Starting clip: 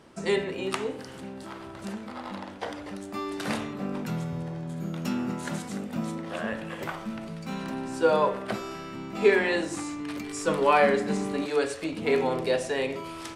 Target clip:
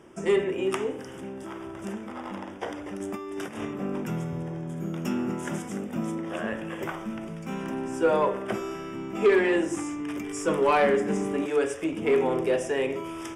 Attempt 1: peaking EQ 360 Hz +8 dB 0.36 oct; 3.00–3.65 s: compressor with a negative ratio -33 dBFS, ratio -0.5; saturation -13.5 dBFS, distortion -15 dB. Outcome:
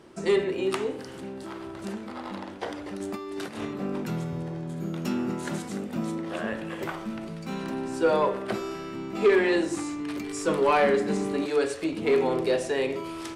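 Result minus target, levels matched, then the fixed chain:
4 kHz band +3.0 dB
Butterworth band-stop 4.2 kHz, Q 2.5; peaking EQ 360 Hz +8 dB 0.36 oct; 3.00–3.65 s: compressor with a negative ratio -33 dBFS, ratio -0.5; saturation -13.5 dBFS, distortion -15 dB

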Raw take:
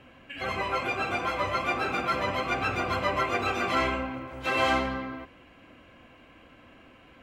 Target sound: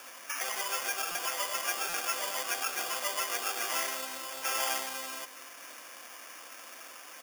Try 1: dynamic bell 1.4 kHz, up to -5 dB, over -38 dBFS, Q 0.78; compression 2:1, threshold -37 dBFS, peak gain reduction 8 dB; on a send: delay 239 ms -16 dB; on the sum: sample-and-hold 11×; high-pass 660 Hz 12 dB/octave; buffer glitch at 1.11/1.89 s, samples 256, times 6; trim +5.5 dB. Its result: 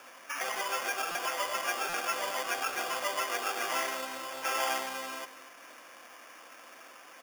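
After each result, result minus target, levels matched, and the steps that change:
8 kHz band -4.0 dB; compression: peak gain reduction -4 dB
add after high-pass: treble shelf 3.7 kHz +10.5 dB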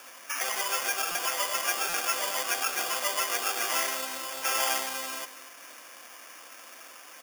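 compression: peak gain reduction -4 dB
change: compression 2:1, threshold -45 dBFS, peak gain reduction 12 dB

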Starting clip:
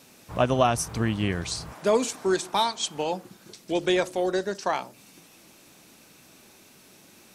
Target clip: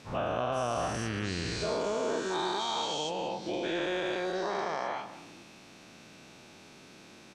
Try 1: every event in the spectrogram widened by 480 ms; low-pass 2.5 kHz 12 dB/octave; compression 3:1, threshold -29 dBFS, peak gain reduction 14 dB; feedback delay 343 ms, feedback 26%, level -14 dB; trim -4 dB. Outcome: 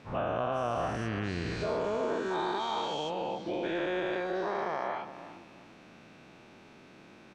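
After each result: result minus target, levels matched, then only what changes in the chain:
echo 154 ms late; 4 kHz band -5.0 dB
change: feedback delay 189 ms, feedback 26%, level -14 dB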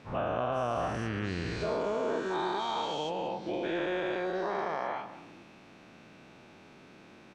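4 kHz band -5.0 dB
change: low-pass 5.1 kHz 12 dB/octave

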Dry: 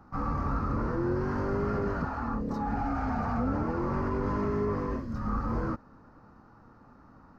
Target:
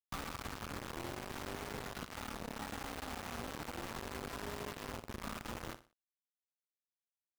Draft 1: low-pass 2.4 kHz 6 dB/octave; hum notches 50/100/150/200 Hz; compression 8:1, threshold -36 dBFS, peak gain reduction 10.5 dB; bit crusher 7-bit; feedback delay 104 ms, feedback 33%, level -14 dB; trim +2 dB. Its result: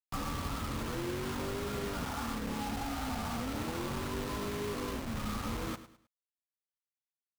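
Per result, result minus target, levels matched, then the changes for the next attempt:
echo 43 ms late; compression: peak gain reduction -7.5 dB
change: feedback delay 61 ms, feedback 33%, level -14 dB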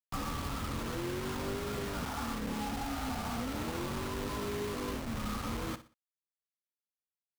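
compression: peak gain reduction -7.5 dB
change: compression 8:1, threshold -44.5 dBFS, peak gain reduction 18 dB

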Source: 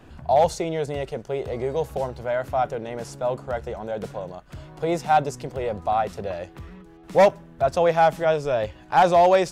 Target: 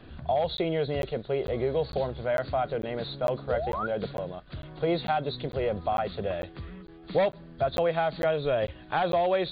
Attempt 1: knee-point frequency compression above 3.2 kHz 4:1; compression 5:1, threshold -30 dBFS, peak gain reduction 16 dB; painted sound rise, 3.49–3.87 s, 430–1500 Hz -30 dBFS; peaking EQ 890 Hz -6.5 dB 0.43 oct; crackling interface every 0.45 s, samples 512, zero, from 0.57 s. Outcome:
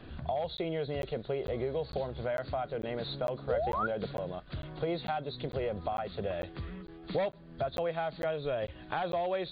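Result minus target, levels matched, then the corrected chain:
compression: peak gain reduction +7 dB
knee-point frequency compression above 3.2 kHz 4:1; compression 5:1, threshold -21 dBFS, peak gain reduction 9 dB; painted sound rise, 3.49–3.87 s, 430–1500 Hz -30 dBFS; peaking EQ 890 Hz -6.5 dB 0.43 oct; crackling interface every 0.45 s, samples 512, zero, from 0.57 s

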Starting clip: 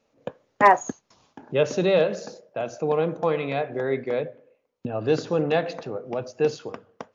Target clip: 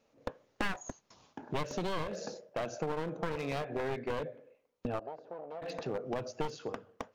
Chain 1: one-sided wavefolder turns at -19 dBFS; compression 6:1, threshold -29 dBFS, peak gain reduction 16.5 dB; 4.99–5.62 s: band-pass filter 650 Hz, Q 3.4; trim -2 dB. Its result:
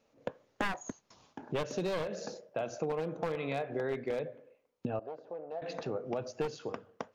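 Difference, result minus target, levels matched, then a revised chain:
one-sided wavefolder: distortion -7 dB
one-sided wavefolder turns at -25.5 dBFS; compression 6:1, threshold -29 dBFS, peak gain reduction 16.5 dB; 4.99–5.62 s: band-pass filter 650 Hz, Q 3.4; trim -2 dB

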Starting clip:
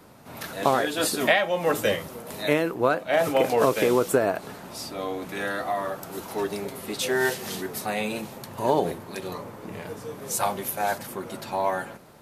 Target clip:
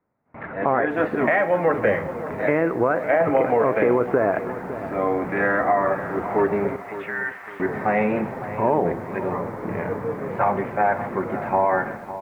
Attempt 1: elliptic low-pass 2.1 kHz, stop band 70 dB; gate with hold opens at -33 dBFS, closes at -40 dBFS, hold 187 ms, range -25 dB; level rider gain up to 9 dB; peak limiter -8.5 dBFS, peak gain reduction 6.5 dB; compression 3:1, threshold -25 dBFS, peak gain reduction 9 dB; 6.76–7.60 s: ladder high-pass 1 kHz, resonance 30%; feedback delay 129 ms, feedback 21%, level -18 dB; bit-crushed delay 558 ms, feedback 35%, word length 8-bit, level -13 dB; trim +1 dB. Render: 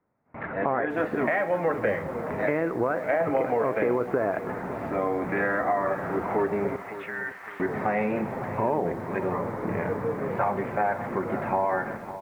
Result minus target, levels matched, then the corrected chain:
compression: peak gain reduction +6 dB
elliptic low-pass 2.1 kHz, stop band 70 dB; gate with hold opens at -33 dBFS, closes at -40 dBFS, hold 187 ms, range -25 dB; level rider gain up to 9 dB; peak limiter -8.5 dBFS, peak gain reduction 6.5 dB; compression 3:1, threshold -16 dBFS, peak gain reduction 3 dB; 6.76–7.60 s: ladder high-pass 1 kHz, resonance 30%; feedback delay 129 ms, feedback 21%, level -18 dB; bit-crushed delay 558 ms, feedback 35%, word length 8-bit, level -13 dB; trim +1 dB

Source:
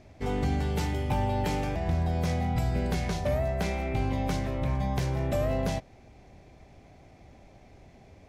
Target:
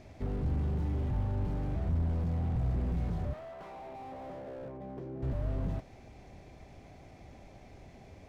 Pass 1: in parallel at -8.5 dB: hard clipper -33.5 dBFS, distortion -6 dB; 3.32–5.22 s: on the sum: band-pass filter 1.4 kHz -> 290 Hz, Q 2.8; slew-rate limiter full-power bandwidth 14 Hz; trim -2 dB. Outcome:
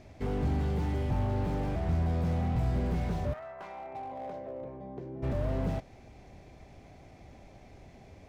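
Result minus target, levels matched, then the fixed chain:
slew-rate limiter: distortion -7 dB
in parallel at -8.5 dB: hard clipper -33.5 dBFS, distortion -6 dB; 3.32–5.22 s: on the sum: band-pass filter 1.4 kHz -> 290 Hz, Q 2.8; slew-rate limiter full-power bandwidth 6 Hz; trim -2 dB

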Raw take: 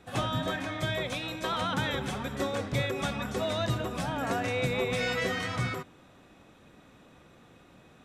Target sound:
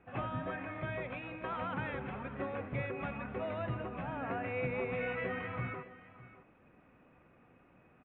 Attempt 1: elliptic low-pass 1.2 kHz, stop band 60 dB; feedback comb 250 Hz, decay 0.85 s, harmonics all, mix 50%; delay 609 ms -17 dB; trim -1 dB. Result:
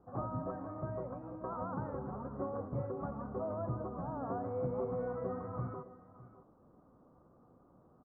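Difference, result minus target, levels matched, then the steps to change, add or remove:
2 kHz band -17.5 dB
change: elliptic low-pass 2.6 kHz, stop band 60 dB

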